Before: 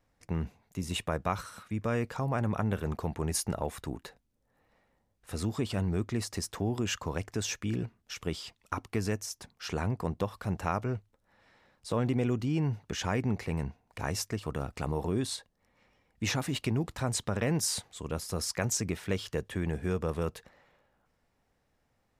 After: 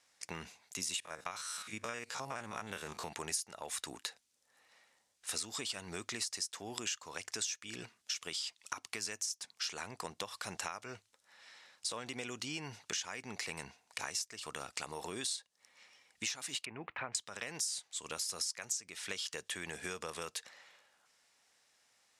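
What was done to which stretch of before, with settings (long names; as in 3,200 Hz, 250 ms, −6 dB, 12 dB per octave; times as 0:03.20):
0:01.00–0:03.13: spectrum averaged block by block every 50 ms
0:16.65–0:17.15: Chebyshev low-pass filter 2,500 Hz, order 4
whole clip: meter weighting curve ITU-R 468; downward compressor 16 to 1, threshold −38 dBFS; high-shelf EQ 6,100 Hz +4.5 dB; level +1 dB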